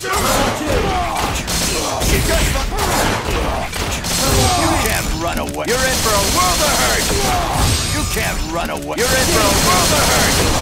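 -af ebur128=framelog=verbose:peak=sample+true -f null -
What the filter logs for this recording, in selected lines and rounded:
Integrated loudness:
  I:         -15.5 LUFS
  Threshold: -25.5 LUFS
Loudness range:
  LRA:         2.3 LU
  Threshold: -35.8 LUFS
  LRA low:   -17.1 LUFS
  LRA high:  -14.8 LUFS
Sample peak:
  Peak:       -1.6 dBFS
True peak:
  Peak:       -1.6 dBFS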